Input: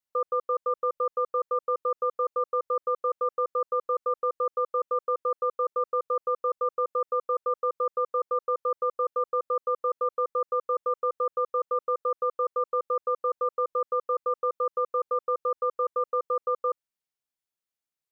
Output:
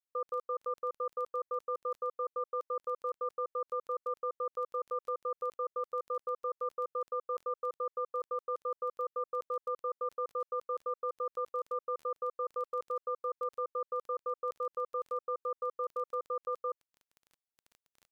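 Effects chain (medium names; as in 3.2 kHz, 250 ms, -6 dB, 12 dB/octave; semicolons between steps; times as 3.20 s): crackle 12 per s -35 dBFS; trim -8.5 dB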